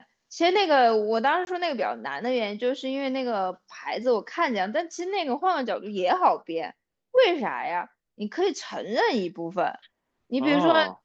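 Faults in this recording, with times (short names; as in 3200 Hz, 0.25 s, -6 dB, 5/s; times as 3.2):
1.45–1.47 gap 21 ms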